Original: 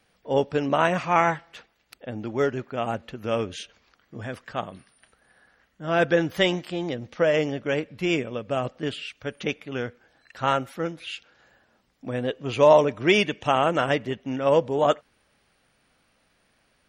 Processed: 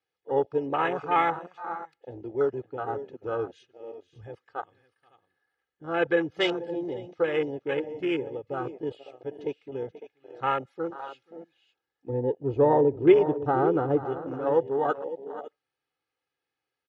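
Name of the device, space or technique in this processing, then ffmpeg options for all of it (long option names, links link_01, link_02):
over-cleaned archive recording: -filter_complex "[0:a]asettb=1/sr,asplit=3[link_01][link_02][link_03];[link_01]atrim=end=12.094[link_04];[link_02]atrim=start=12.09:end=14.06,asetpts=PTS-STARTPTS,afade=type=in:duration=0.004:curve=qsin,afade=type=out:start_time=1.966:duration=0.004:curve=qsin,tiltshelf=frequency=770:gain=9.5[link_05];[link_03]atrim=start=14.056[link_06];[link_04][link_05]acrossfade=duration=0.004:curve1=hsin:curve2=qsin[link_07];[link_07][link_06]acrossfade=duration=0.004:curve1=qsin:curve2=hsin,highpass=130,lowpass=6000,aecho=1:1:2.4:0.91,aecho=1:1:482|554:0.178|0.237,afwtdn=0.0501,volume=-6dB"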